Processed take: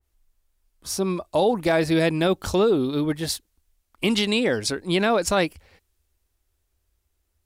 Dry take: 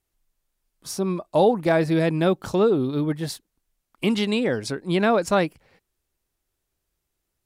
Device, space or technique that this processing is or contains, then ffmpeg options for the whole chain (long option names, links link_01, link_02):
car stereo with a boomy subwoofer: -af "lowshelf=frequency=100:width_type=q:width=3:gain=6.5,alimiter=limit=-13.5dB:level=0:latency=1:release=36,adynamicequalizer=threshold=0.00891:dfrequency=2200:dqfactor=0.7:tfrequency=2200:tqfactor=0.7:attack=5:release=100:ratio=0.375:range=3:mode=boostabove:tftype=highshelf,volume=1.5dB"